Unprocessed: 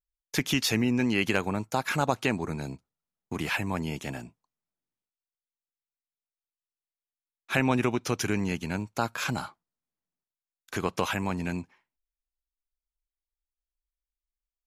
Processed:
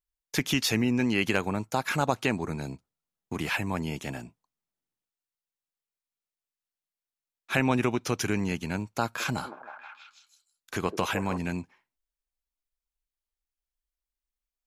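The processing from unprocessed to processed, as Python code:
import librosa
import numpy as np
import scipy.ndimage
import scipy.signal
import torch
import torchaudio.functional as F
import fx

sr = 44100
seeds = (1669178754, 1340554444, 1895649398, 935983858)

y = fx.echo_stepped(x, sr, ms=159, hz=440.0, octaves=0.7, feedback_pct=70, wet_db=-5.0, at=(9.04, 11.38))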